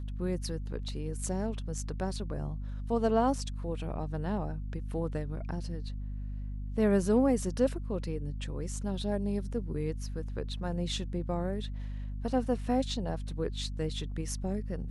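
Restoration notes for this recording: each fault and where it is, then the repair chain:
hum 50 Hz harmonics 5 -37 dBFS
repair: de-hum 50 Hz, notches 5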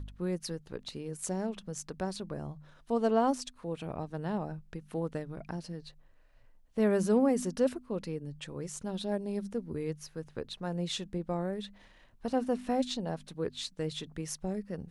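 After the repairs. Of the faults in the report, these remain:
none

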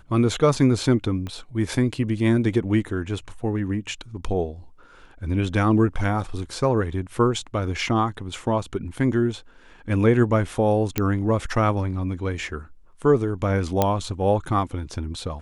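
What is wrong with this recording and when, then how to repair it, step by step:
1.27 pop -20 dBFS
10.98 pop -7 dBFS
13.82 pop -5 dBFS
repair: de-click

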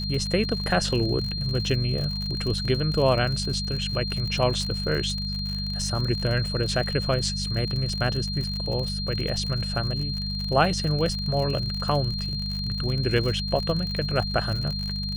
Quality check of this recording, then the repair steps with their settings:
crackle 55/s -29 dBFS
hum 50 Hz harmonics 4 -31 dBFS
tone 4200 Hz -31 dBFS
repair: de-click; notch 4200 Hz, Q 30; de-hum 50 Hz, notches 4

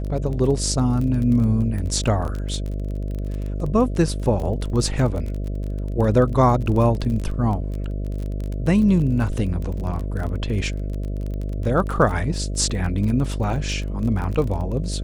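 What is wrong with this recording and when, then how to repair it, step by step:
buzz 50 Hz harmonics 13 -26 dBFS
crackle 27/s -27 dBFS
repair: de-click; de-hum 50 Hz, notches 13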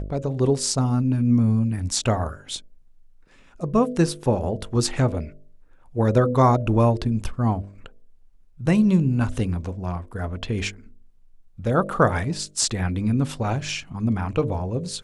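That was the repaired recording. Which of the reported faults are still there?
none

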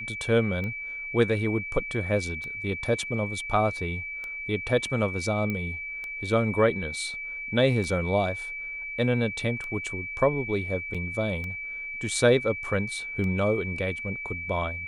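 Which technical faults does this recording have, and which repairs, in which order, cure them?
tick 33 1/3 rpm -23 dBFS
tone 2300 Hz -33 dBFS
5.5 pop -18 dBFS
10.94–10.95 gap 5.8 ms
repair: de-click; notch 2300 Hz, Q 30; interpolate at 10.94, 5.8 ms

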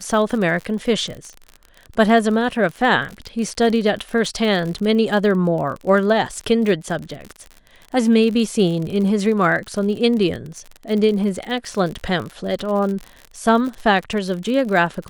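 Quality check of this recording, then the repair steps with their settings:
crackle 52/s -26 dBFS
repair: de-click

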